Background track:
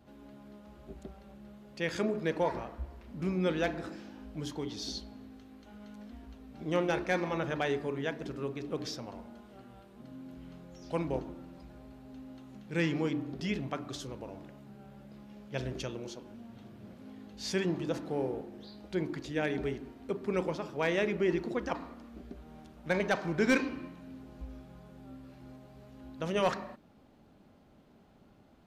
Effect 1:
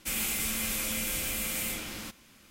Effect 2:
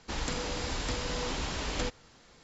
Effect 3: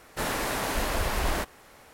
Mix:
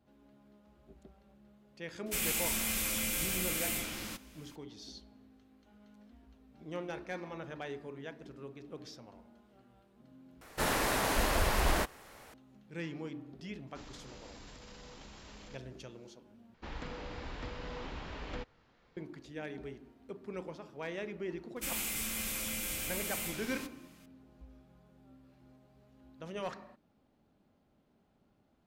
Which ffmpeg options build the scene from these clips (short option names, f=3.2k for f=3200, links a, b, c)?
-filter_complex "[1:a]asplit=2[a][b];[2:a]asplit=2[c][d];[0:a]volume=-10.5dB[e];[c]alimiter=level_in=5.5dB:limit=-24dB:level=0:latency=1:release=16,volume=-5.5dB[f];[d]lowpass=2.8k[g];[e]asplit=3[h][i][j];[h]atrim=end=10.414[k];[3:a]atrim=end=1.93,asetpts=PTS-STARTPTS,volume=-1.5dB[l];[i]atrim=start=12.336:end=16.544[m];[g]atrim=end=2.43,asetpts=PTS-STARTPTS,volume=-8dB[n];[j]atrim=start=18.966[o];[a]atrim=end=2.5,asetpts=PTS-STARTPTS,volume=-2dB,afade=t=in:d=0.004:c=hsin,afade=t=out:st=2.496:d=0.004:c=hsin,adelay=2060[p];[f]atrim=end=2.43,asetpts=PTS-STARTPTS,volume=-14.5dB,afade=t=in:d=0.004:c=hsin,afade=t=out:st=2.426:d=0.004:c=hsin,adelay=13670[q];[b]atrim=end=2.5,asetpts=PTS-STARTPTS,volume=-5.5dB,afade=t=in:d=0.004:c=hsin,afade=t=out:st=2.496:d=0.004:c=hsin,adelay=21560[r];[k][l]acrossfade=d=0.004:c1=hsin:c2=hsin[s];[s][m]acrossfade=d=0.004:c1=hsin:c2=hsin[t];[t][n]acrossfade=d=0.004:c1=hsin:c2=hsin[u];[u][o]acrossfade=d=0.004:c1=hsin:c2=hsin[v];[v][p][q][r]amix=inputs=4:normalize=0"